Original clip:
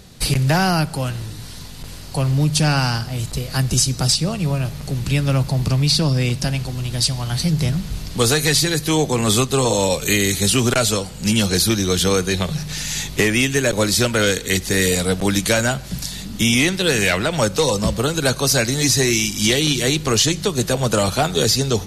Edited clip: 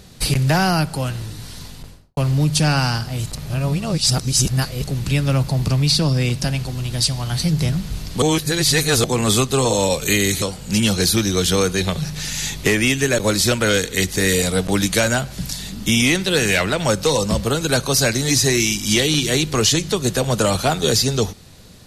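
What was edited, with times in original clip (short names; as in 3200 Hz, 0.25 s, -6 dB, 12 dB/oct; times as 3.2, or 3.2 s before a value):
1.66–2.17 studio fade out
3.35–4.84 reverse
8.22–9.04 reverse
10.42–10.95 cut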